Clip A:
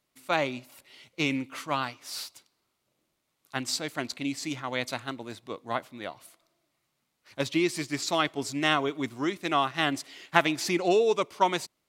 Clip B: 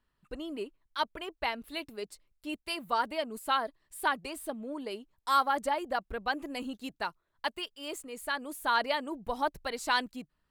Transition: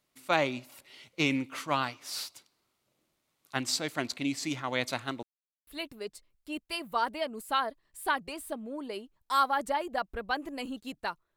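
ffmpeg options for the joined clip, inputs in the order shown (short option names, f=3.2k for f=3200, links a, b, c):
-filter_complex "[0:a]apad=whole_dur=11.36,atrim=end=11.36,asplit=2[a][b];[a]atrim=end=5.23,asetpts=PTS-STARTPTS,afade=t=out:st=5.226:d=0.004:c=hsin[c];[b]atrim=start=5.23:end=5.67,asetpts=PTS-STARTPTS,volume=0[d];[1:a]atrim=start=1.64:end=7.33,asetpts=PTS-STARTPTS,afade=t=in:d=0.004:c=hsin[e];[c][d][e]concat=n=3:v=0:a=1"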